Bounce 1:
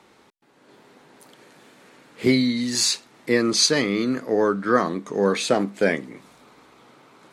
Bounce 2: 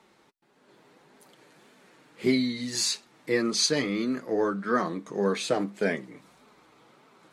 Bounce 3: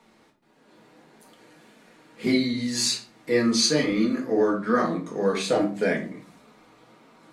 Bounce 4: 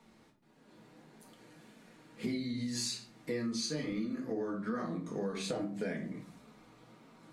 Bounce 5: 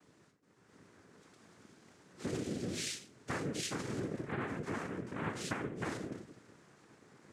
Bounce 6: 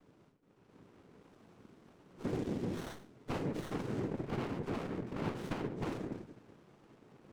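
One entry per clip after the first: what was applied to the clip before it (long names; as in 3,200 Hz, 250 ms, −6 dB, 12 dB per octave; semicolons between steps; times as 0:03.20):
flanger 1.7 Hz, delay 4.4 ms, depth 2.5 ms, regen −26%; level −2.5 dB
convolution reverb RT60 0.40 s, pre-delay 4 ms, DRR 0.5 dB
bass and treble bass +8 dB, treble +2 dB; downward compressor 6 to 1, threshold −27 dBFS, peak gain reduction 12.5 dB; level −6.5 dB
cochlear-implant simulation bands 3; level −2.5 dB
high-shelf EQ 5,100 Hz −11 dB; windowed peak hold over 17 samples; level +2 dB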